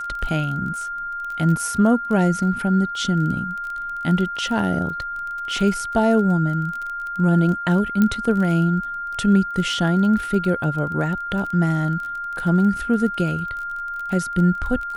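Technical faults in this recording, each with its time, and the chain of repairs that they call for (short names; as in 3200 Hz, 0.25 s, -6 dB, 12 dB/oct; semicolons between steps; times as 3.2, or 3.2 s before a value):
crackle 21/s -28 dBFS
tone 1400 Hz -26 dBFS
8.02 pop -8 dBFS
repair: de-click; notch 1400 Hz, Q 30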